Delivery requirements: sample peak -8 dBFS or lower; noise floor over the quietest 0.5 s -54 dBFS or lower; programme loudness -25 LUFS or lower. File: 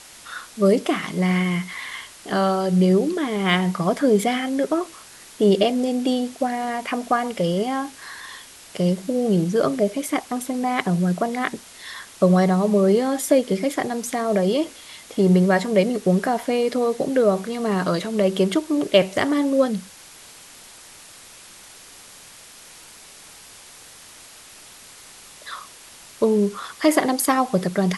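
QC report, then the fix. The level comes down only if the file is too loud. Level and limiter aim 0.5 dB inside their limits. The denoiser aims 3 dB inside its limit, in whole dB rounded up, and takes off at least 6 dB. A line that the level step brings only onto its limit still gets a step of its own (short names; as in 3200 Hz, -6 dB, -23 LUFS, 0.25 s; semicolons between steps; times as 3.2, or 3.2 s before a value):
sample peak -3.0 dBFS: fail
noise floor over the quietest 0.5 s -45 dBFS: fail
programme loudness -21.0 LUFS: fail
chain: denoiser 8 dB, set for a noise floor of -45 dBFS; gain -4.5 dB; limiter -8.5 dBFS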